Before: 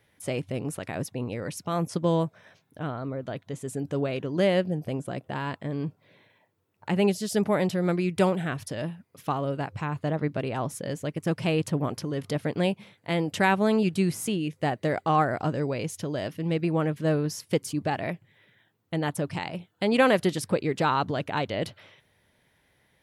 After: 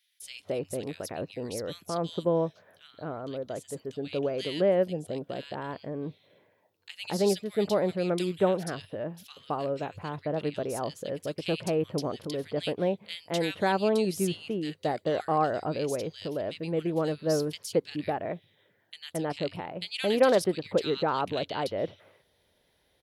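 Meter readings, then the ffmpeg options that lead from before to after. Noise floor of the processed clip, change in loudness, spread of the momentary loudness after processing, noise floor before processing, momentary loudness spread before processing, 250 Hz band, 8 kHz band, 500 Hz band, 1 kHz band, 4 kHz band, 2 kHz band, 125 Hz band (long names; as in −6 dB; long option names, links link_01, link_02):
−70 dBFS, −2.5 dB, 11 LU, −68 dBFS, 10 LU, −4.5 dB, −2.5 dB, 0.0 dB, −3.5 dB, 0.0 dB, −6.5 dB, −7.5 dB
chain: -filter_complex "[0:a]equalizer=frequency=125:width_type=o:width=1:gain=-9,equalizer=frequency=250:width_type=o:width=1:gain=-4,equalizer=frequency=500:width_type=o:width=1:gain=3,equalizer=frequency=1000:width_type=o:width=1:gain=-4,equalizer=frequency=2000:width_type=o:width=1:gain=-5,equalizer=frequency=4000:width_type=o:width=1:gain=5,equalizer=frequency=8000:width_type=o:width=1:gain=-4,acrossover=split=2100[link_01][link_02];[link_01]adelay=220[link_03];[link_03][link_02]amix=inputs=2:normalize=0"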